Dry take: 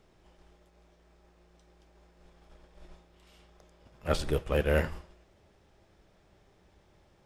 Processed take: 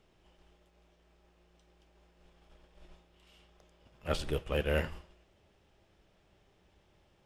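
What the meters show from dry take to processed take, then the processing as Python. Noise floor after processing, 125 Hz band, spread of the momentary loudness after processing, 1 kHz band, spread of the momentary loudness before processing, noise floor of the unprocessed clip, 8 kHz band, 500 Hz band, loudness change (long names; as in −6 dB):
−69 dBFS, −4.5 dB, 14 LU, −4.5 dB, 14 LU, −65 dBFS, −4.5 dB, −4.5 dB, −4.0 dB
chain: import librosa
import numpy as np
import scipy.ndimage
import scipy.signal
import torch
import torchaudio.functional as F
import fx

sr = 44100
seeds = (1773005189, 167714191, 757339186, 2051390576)

y = fx.peak_eq(x, sr, hz=2900.0, db=6.5, octaves=0.47)
y = y * 10.0 ** (-4.5 / 20.0)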